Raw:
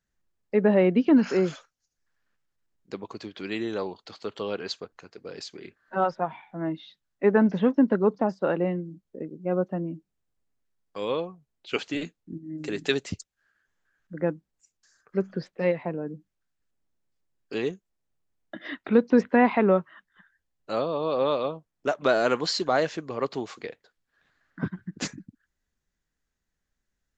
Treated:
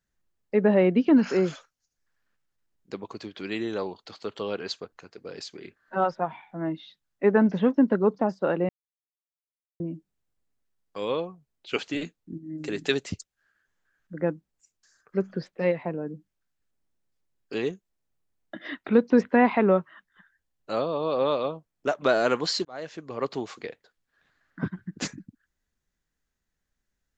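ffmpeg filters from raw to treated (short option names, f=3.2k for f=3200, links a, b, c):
-filter_complex "[0:a]asplit=4[a][b][c][d];[a]atrim=end=8.69,asetpts=PTS-STARTPTS,afade=t=out:st=8.686:d=0.004:c=hsin[e];[b]atrim=start=8.69:end=9.8,asetpts=PTS-STARTPTS,volume=0[f];[c]atrim=start=9.8:end=22.65,asetpts=PTS-STARTPTS,afade=t=in:d=0.004:c=hsin,afade=t=out:st=12.846:d=0.004:c=hsin[g];[d]atrim=start=22.65,asetpts=PTS-STARTPTS,afade=t=in:d=0.65[h];[e][f][g][h]concat=n=4:v=0:a=1"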